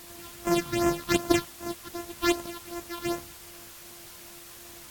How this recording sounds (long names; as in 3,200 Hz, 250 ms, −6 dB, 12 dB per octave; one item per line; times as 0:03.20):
a buzz of ramps at a fixed pitch in blocks of 128 samples
phaser sweep stages 6, 2.6 Hz, lowest notch 500–4,000 Hz
a quantiser's noise floor 8 bits, dither triangular
AAC